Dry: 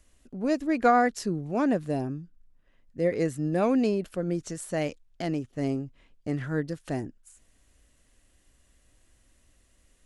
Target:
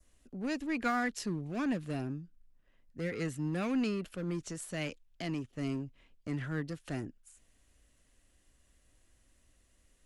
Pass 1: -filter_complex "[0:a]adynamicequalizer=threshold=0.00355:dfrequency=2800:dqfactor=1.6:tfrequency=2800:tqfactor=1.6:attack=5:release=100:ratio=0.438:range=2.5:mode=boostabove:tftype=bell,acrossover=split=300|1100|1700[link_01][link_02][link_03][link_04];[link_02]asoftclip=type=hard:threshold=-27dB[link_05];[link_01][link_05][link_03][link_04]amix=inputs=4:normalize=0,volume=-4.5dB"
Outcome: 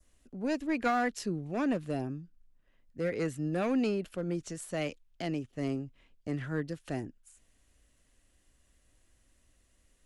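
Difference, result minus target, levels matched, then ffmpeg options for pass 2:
hard clipping: distortion −6 dB
-filter_complex "[0:a]adynamicequalizer=threshold=0.00355:dfrequency=2800:dqfactor=1.6:tfrequency=2800:tqfactor=1.6:attack=5:release=100:ratio=0.438:range=2.5:mode=boostabove:tftype=bell,acrossover=split=300|1100|1700[link_01][link_02][link_03][link_04];[link_02]asoftclip=type=hard:threshold=-38.5dB[link_05];[link_01][link_05][link_03][link_04]amix=inputs=4:normalize=0,volume=-4.5dB"

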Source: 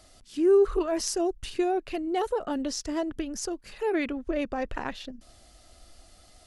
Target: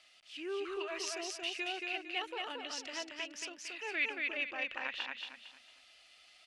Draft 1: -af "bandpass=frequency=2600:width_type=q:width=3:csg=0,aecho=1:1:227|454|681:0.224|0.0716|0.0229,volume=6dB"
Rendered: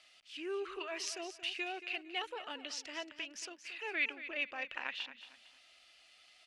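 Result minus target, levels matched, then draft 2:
echo-to-direct −10 dB
-af "bandpass=frequency=2600:width_type=q:width=3:csg=0,aecho=1:1:227|454|681|908:0.708|0.227|0.0725|0.0232,volume=6dB"

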